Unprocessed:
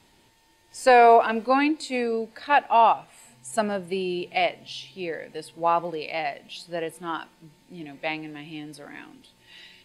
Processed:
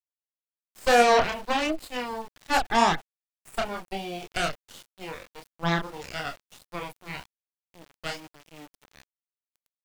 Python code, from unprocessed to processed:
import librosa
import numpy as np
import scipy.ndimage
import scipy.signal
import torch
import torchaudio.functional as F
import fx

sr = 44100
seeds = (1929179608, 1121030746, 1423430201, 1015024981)

y = fx.cheby_harmonics(x, sr, harmonics=(3, 4, 8), levels_db=(-15, -19, -16), full_scale_db=-7.5)
y = fx.chorus_voices(y, sr, voices=2, hz=1.0, base_ms=27, depth_ms=3.0, mix_pct=40)
y = np.where(np.abs(y) >= 10.0 ** (-43.5 / 20.0), y, 0.0)